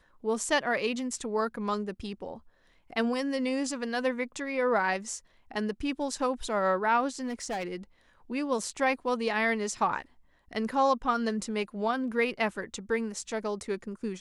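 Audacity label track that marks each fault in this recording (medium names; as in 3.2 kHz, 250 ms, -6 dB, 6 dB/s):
7.200000	7.710000	clipped -29 dBFS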